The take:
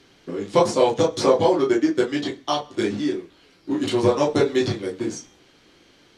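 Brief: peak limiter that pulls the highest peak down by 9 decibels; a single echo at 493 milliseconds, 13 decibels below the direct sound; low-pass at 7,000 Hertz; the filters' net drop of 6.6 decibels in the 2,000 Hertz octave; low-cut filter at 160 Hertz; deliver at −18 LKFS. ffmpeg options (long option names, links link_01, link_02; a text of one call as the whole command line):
ffmpeg -i in.wav -af "highpass=160,lowpass=7000,equalizer=frequency=2000:width_type=o:gain=-8.5,alimiter=limit=-12.5dB:level=0:latency=1,aecho=1:1:493:0.224,volume=6.5dB" out.wav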